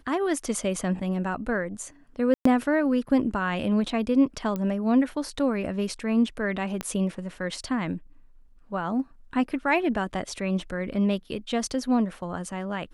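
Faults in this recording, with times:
2.34–2.45 gap 0.114 s
4.56 pop -18 dBFS
6.81 pop -15 dBFS

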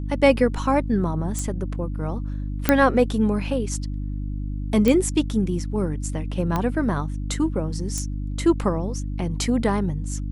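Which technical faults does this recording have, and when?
hum 50 Hz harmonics 6 -28 dBFS
1.39 pop -14 dBFS
2.69 pop -2 dBFS
4.88 pop -8 dBFS
6.56 pop -11 dBFS
7.98 pop -14 dBFS

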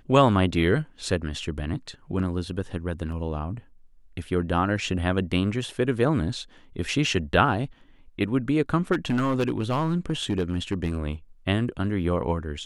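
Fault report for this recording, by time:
3.12 gap 2.1 ms
8.92–10.98 clipped -19.5 dBFS

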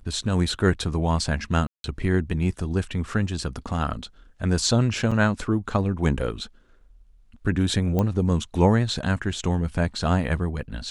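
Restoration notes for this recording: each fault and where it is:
1.67–1.84 gap 0.172 s
5.11–5.12 gap 5.2 ms
7.99 pop -12 dBFS

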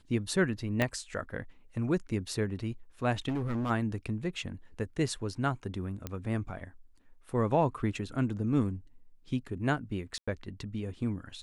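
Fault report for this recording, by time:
0.82 pop -14 dBFS
3.28–3.71 clipped -28.5 dBFS
6.07 pop -20 dBFS
10.18–10.28 gap 95 ms

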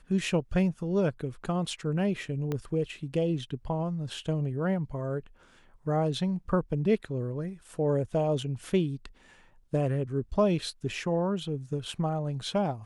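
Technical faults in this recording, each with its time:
2.52 pop -19 dBFS

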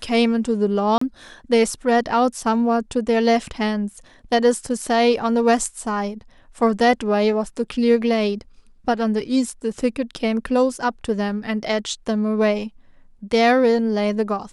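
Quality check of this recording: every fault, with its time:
0.98–1.01 gap 34 ms

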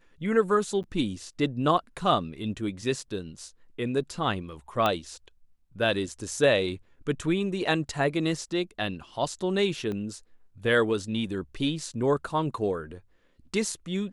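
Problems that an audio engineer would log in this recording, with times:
0.83–0.84 gap 8.5 ms
4.86 pop -12 dBFS
9.92 pop -23 dBFS

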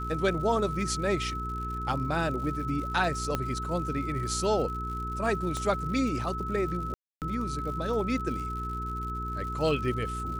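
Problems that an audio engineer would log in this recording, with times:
crackle 120/s -38 dBFS
hum 60 Hz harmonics 7 -36 dBFS
tone 1300 Hz -34 dBFS
3.35 pop -14 dBFS
5.57 pop -20 dBFS
6.94–7.22 gap 0.278 s

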